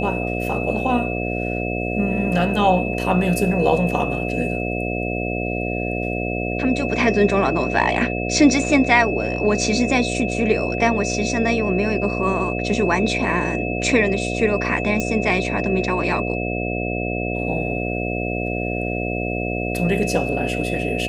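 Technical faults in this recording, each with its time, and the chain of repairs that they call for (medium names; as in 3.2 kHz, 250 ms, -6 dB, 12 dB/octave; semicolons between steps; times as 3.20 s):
buzz 60 Hz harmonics 12 -25 dBFS
whine 2.6 kHz -28 dBFS
15.00 s: pop -10 dBFS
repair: de-click; band-stop 2.6 kHz, Q 30; de-hum 60 Hz, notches 12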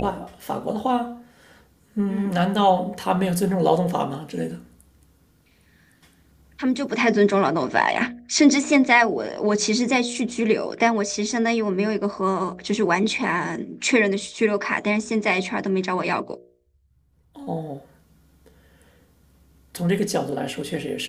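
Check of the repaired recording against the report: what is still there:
nothing left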